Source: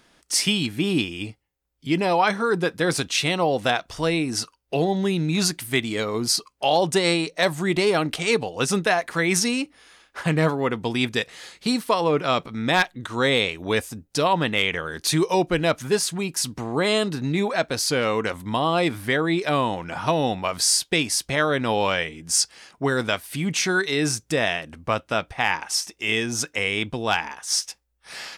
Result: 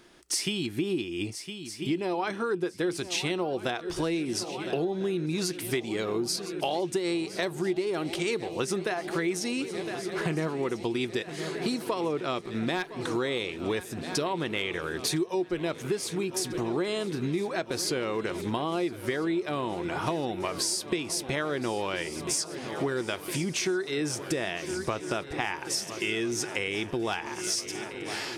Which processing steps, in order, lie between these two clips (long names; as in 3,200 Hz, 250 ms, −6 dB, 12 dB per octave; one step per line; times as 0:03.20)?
parametric band 360 Hz +13 dB 0.28 octaves
feedback echo with a long and a short gap by turns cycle 1,345 ms, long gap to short 3 to 1, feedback 67%, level −18.5 dB
downward compressor 6 to 1, threshold −27 dBFS, peak gain reduction 18.5 dB